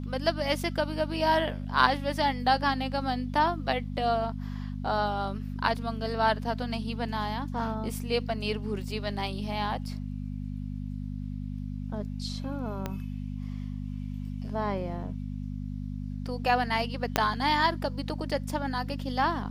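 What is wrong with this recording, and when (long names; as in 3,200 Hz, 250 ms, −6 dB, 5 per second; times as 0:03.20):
mains hum 50 Hz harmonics 5 −35 dBFS
0:12.86: click −17 dBFS
0:17.16: click −6 dBFS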